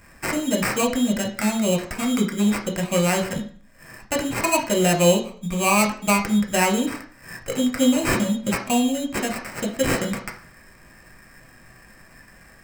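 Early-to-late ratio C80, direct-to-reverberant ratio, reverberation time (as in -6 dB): 14.5 dB, 1.5 dB, 0.45 s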